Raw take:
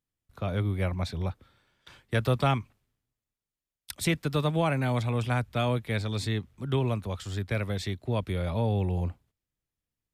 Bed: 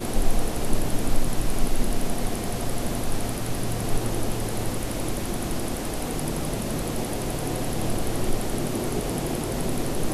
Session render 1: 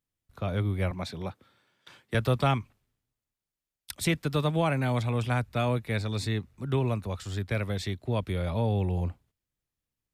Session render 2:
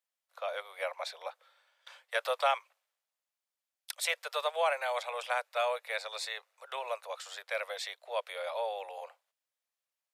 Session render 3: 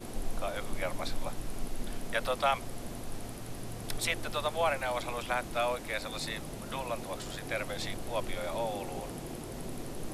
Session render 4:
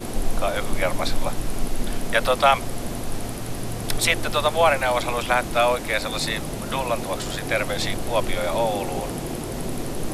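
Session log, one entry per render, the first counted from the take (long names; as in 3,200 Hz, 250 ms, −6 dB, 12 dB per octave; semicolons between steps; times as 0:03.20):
0:00.91–0:02.15: high-pass filter 150 Hz; 0:05.46–0:07.25: notch filter 3,200 Hz, Q 9.3
Butterworth high-pass 510 Hz 72 dB per octave; high-shelf EQ 11,000 Hz −3.5 dB
mix in bed −13.5 dB
level +11.5 dB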